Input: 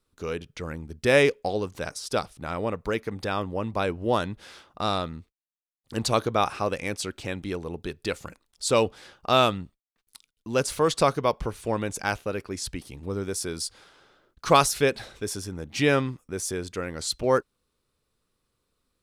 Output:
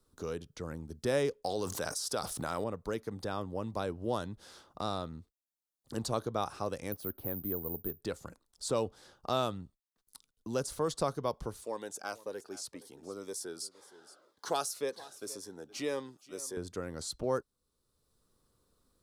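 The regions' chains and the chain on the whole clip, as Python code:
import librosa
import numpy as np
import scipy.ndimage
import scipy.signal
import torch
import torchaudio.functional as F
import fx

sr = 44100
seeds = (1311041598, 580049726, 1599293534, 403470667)

y = fx.chain(x, sr, fx.tilt_eq(slope=2.5),
    fx.env_flatten(amount_pct=70), at=(1.44, 2.64))
y = fx.chain(y, sr, fx.lowpass(hz=1200.0, slope=6),
    fx.resample_bad(factor=3, down='filtered', up='zero_stuff'), at=(6.92, 8.01))
y = fx.chain(y, sr, fx.highpass(hz=430.0, slope=12),
    fx.echo_single(ms=468, db=-21.5),
    fx.notch_cascade(direction='falling', hz=1.9), at=(11.63, 16.57))
y = fx.peak_eq(y, sr, hz=2400.0, db=-12.0, octaves=0.99)
y = fx.band_squash(y, sr, depth_pct=40)
y = F.gain(torch.from_numpy(y), -8.0).numpy()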